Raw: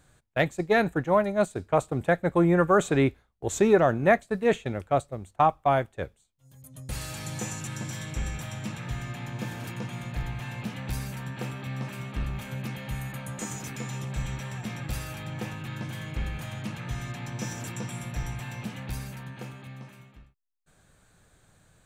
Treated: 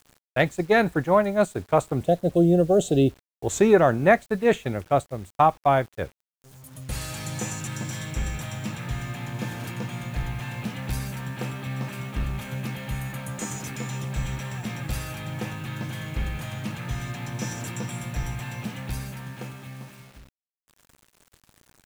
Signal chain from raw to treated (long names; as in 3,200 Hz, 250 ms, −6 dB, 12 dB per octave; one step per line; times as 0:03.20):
gain on a spectral selection 0:02.05–0:03.16, 780–2,600 Hz −23 dB
bit reduction 9 bits
level +3 dB